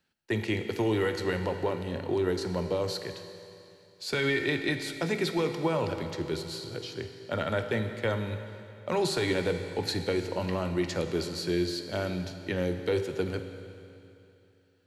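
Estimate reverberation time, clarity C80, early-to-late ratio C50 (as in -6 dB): 2.8 s, 9.0 dB, 8.0 dB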